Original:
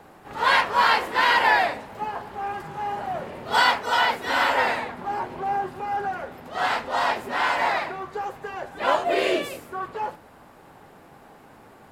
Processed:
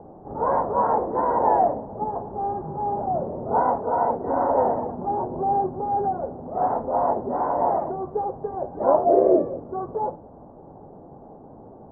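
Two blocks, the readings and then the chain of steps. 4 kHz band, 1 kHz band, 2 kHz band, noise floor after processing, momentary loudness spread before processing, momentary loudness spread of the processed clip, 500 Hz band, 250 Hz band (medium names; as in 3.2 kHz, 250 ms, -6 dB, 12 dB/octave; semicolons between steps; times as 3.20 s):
under -40 dB, +0.5 dB, -22.5 dB, -45 dBFS, 14 LU, 10 LU, +6.5 dB, +7.0 dB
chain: inverse Chebyshev low-pass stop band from 2.6 kHz, stop band 60 dB; trim +7 dB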